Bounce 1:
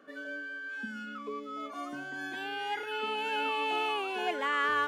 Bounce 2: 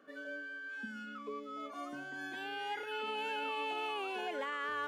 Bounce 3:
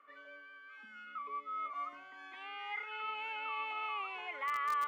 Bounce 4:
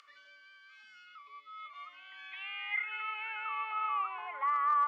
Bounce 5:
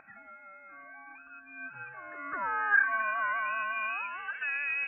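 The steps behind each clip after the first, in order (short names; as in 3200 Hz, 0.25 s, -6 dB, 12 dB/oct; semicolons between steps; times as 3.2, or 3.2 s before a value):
dynamic EQ 540 Hz, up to +5 dB, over -53 dBFS, Q 5; limiter -25 dBFS, peak gain reduction 6.5 dB; gain -4.5 dB
double band-pass 1600 Hz, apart 0.76 oct; in parallel at -11.5 dB: bit-crush 6-bit; on the sum: gain +8.5 dB
upward compressor, threshold -43 dBFS; band-pass sweep 5000 Hz -> 970 Hz, 1.02–4.51; gain +8.5 dB
resonant high-pass 2200 Hz, resonance Q 2.5; inverted band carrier 3700 Hz; gain +3.5 dB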